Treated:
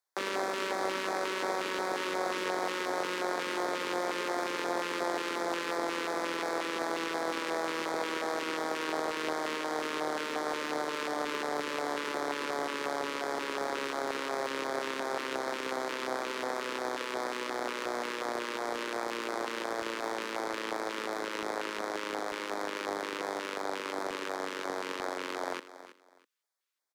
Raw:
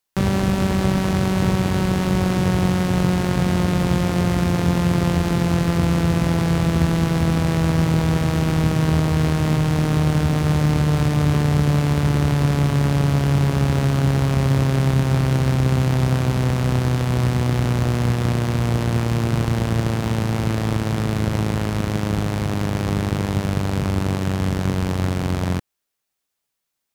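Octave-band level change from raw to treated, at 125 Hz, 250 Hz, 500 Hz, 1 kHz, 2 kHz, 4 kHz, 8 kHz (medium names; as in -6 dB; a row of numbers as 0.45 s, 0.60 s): under -40 dB, -19.5 dB, -7.5 dB, -5.0 dB, -4.5 dB, -7.0 dB, -9.0 dB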